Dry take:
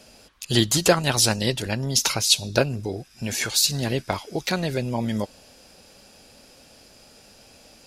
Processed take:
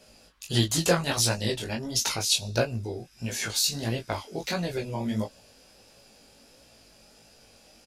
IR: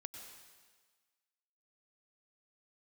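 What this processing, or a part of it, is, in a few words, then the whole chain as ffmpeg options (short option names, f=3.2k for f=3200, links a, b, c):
double-tracked vocal: -filter_complex "[0:a]asplit=2[a][b];[b]adelay=18,volume=-5.5dB[c];[a][c]amix=inputs=2:normalize=0,flanger=delay=16:depth=7.3:speed=1.5,volume=-3dB"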